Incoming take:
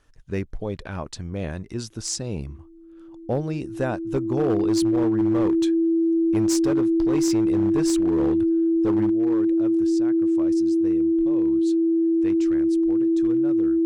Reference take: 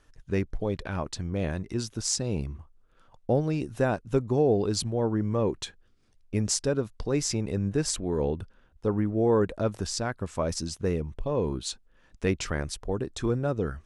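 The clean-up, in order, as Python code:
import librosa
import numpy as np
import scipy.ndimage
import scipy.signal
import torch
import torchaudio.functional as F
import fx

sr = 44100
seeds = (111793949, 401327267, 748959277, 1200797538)

y = fx.fix_declip(x, sr, threshold_db=-16.0)
y = fx.notch(y, sr, hz=330.0, q=30.0)
y = fx.fix_level(y, sr, at_s=9.1, step_db=10.5)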